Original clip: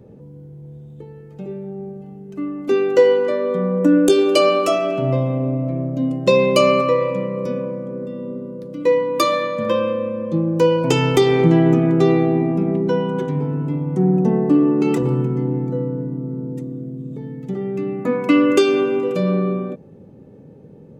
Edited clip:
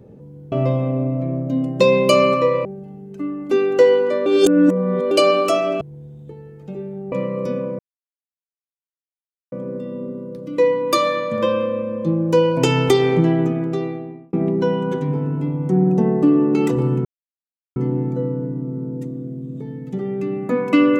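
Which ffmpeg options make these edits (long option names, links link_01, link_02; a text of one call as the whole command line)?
ffmpeg -i in.wav -filter_complex "[0:a]asplit=10[link_01][link_02][link_03][link_04][link_05][link_06][link_07][link_08][link_09][link_10];[link_01]atrim=end=0.522[link_11];[link_02]atrim=start=4.988:end=7.122[link_12];[link_03]atrim=start=1.828:end=3.442[link_13];[link_04]atrim=start=3.438:end=4.292,asetpts=PTS-STARTPTS,areverse[link_14];[link_05]atrim=start=4.288:end=4.992[link_15];[link_06]atrim=start=0.518:end=1.832[link_16];[link_07]atrim=start=7.118:end=7.79,asetpts=PTS-STARTPTS,afade=type=out:start_time=0.668:duration=0.004:curve=hsin,apad=pad_dur=1.73[link_17];[link_08]atrim=start=7.79:end=12.6,asetpts=PTS-STARTPTS,afade=type=in:duration=0.004:curve=hsin,afade=type=out:start_time=3.33:duration=1.48[link_18];[link_09]atrim=start=12.6:end=15.32,asetpts=PTS-STARTPTS,afade=type=in:duration=0.004:curve=hsin,afade=type=out:start_time=2.716:duration=0.004:curve=hsin,apad=pad_dur=0.71[link_19];[link_10]atrim=start=15.32,asetpts=PTS-STARTPTS,afade=type=in:duration=0.004:curve=hsin[link_20];[link_11][link_12]acrossfade=duration=0.004:curve1=hsin:curve2=hsin[link_21];[link_21][link_13]acrossfade=duration=0.004:curve1=hsin:curve2=hsin[link_22];[link_22][link_14]acrossfade=duration=0.004:curve1=hsin:curve2=hsin[link_23];[link_23][link_15]acrossfade=duration=0.004:curve1=hsin:curve2=hsin[link_24];[link_24][link_16]acrossfade=duration=0.004:curve1=hsin:curve2=hsin[link_25];[link_17][link_18][link_19][link_20]concat=n=4:v=0:a=1[link_26];[link_25][link_26]acrossfade=duration=0.004:curve1=hsin:curve2=hsin" out.wav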